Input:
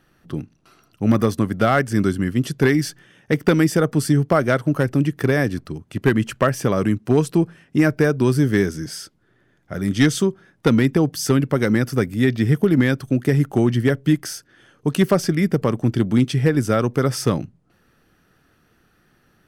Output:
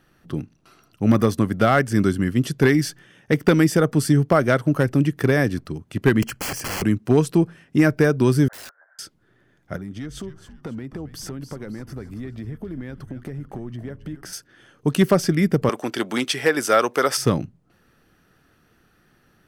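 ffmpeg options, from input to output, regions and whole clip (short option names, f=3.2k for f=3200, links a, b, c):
-filter_complex "[0:a]asettb=1/sr,asplit=3[a][b][c];[a]atrim=end=6.224[d];[b]atrim=start=6.22:end=6.82,asetpts=PTS-STARTPTS,afade=t=in:d=0.004:c=qsin,afade=t=out:st=0.596:d=0.004:c=qsin,aeval=exprs='(mod(13.3*val(0)+1,2)-1)/13.3':c=same,asuperstop=centerf=3700:order=4:qfactor=4.7[e];[c]atrim=start=6.816[f];[d][e]acrossfade=d=0.004:c1=hsin:c2=qsin[g];[g][f]acrossfade=d=0.004:c1=qsin:c2=hsin,asettb=1/sr,asplit=3[h][i][j];[h]atrim=end=8.484[k];[i]atrim=start=8.48:end=8.99,asetpts=PTS-STARTPTS,afade=t=in:d=0.004:c=qsin,afade=t=out:st=0.506:d=0.004:c=qsin,agate=range=-9dB:threshold=-26dB:ratio=16:release=100:detection=peak,asuperpass=centerf=1000:order=12:qfactor=0.89,aeval=exprs='(mod(53.1*val(0)+1,2)-1)/53.1':c=same[l];[j]atrim=start=8.986[m];[k][l]acrossfade=d=0.004:c1=hsin:c2=qsin[n];[n][m]acrossfade=d=0.004:c1=qsin:c2=hsin,asettb=1/sr,asplit=3[o][p][q];[o]atrim=end=9.764[r];[p]atrim=start=9.76:end=14.33,asetpts=PTS-STARTPTS,afade=t=in:d=0.004:c=qsin,afade=t=out:st=4.566:d=0.004:c=qsin,highshelf=f=2.2k:g=-10.5,acompressor=threshold=-31dB:ratio=5:attack=3.2:release=140:knee=1:detection=peak,asplit=5[s][t][u][v][w];[t]adelay=270,afreqshift=-150,volume=-12dB[x];[u]adelay=540,afreqshift=-300,volume=-20.2dB[y];[v]adelay=810,afreqshift=-450,volume=-28.4dB[z];[w]adelay=1080,afreqshift=-600,volume=-36.5dB[aa];[s][x][y][z][aa]amix=inputs=5:normalize=0,atrim=end_sample=201537[ab];[q]atrim=start=14.326[ac];[r][ab]acrossfade=d=0.004:c1=hsin:c2=qsin[ad];[ad][ac]acrossfade=d=0.004:c1=qsin:c2=hsin,asettb=1/sr,asplit=3[ae][af][ag];[ae]atrim=end=15.694[ah];[af]atrim=start=15.69:end=17.17,asetpts=PTS-STARTPTS,afade=t=in:d=0.004:c=qsin,afade=t=out:st=1.476:d=0.004:c=qsin,highpass=600,acontrast=84[ai];[ag]atrim=start=17.166[aj];[ah][ai]acrossfade=d=0.004:c1=hsin:c2=qsin[ak];[ak][aj]acrossfade=d=0.004:c1=qsin:c2=hsin"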